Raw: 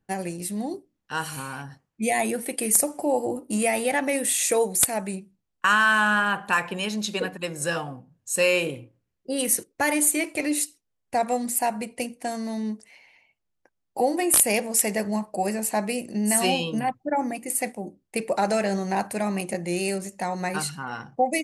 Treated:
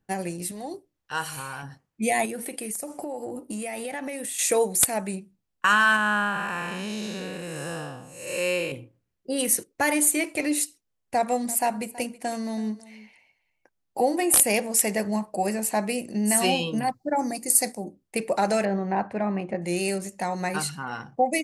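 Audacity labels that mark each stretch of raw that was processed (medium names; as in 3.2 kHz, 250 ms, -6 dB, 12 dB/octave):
0.510000	1.630000	peaking EQ 230 Hz -12.5 dB
2.250000	4.390000	compression 8:1, threshold -29 dBFS
5.960000	8.720000	spectral blur width 313 ms
11.160000	14.430000	delay 325 ms -19 dB
16.830000	17.840000	resonant high shelf 3.7 kHz +6.5 dB, Q 3
18.650000	19.620000	low-pass 1.8 kHz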